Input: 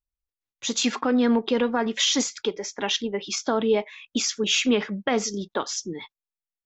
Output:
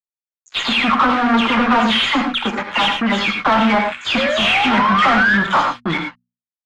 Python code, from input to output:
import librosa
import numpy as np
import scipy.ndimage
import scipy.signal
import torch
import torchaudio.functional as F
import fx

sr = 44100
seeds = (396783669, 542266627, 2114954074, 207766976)

p1 = fx.spec_delay(x, sr, highs='early', ms=219)
p2 = fx.rider(p1, sr, range_db=3, speed_s=2.0)
p3 = p1 + (p2 * librosa.db_to_amplitude(-3.0))
p4 = fx.fixed_phaser(p3, sr, hz=1600.0, stages=6)
p5 = fx.spec_paint(p4, sr, seeds[0], shape='rise', start_s=4.16, length_s=1.22, low_hz=510.0, high_hz=1800.0, level_db=-34.0)
p6 = fx.fuzz(p5, sr, gain_db=31.0, gate_db=-38.0)
p7 = fx.peak_eq(p6, sr, hz=1400.0, db=11.0, octaves=1.4)
p8 = fx.hum_notches(p7, sr, base_hz=60, count=4)
p9 = fx.rev_gated(p8, sr, seeds[1], gate_ms=130, shape='rising', drr_db=5.5)
p10 = 10.0 ** (-8.5 / 20.0) * np.tanh(p9 / 10.0 ** (-8.5 / 20.0))
y = scipy.signal.sosfilt(scipy.signal.butter(2, 3200.0, 'lowpass', fs=sr, output='sos'), p10)